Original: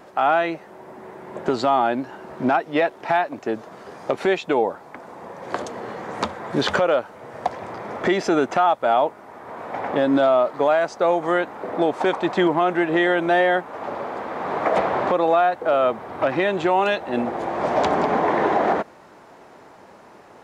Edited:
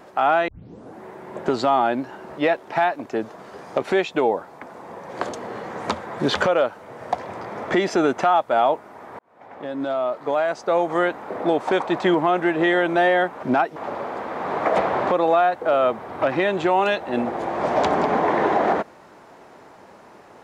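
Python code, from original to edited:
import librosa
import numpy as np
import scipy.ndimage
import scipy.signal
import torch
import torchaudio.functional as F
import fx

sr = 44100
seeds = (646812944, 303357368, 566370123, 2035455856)

y = fx.edit(x, sr, fx.tape_start(start_s=0.48, length_s=0.53),
    fx.move(start_s=2.38, length_s=0.33, to_s=13.76),
    fx.fade_in_span(start_s=9.52, length_s=1.74), tone=tone)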